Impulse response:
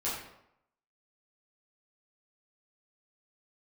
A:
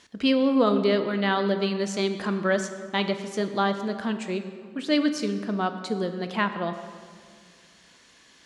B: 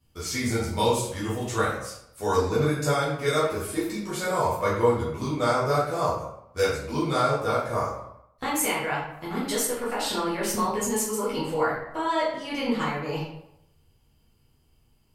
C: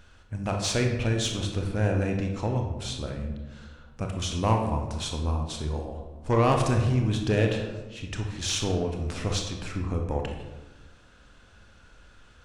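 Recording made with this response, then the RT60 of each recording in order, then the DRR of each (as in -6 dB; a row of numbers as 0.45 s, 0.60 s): B; 2.0 s, 0.80 s, 1.2 s; 8.0 dB, -9.0 dB, 2.5 dB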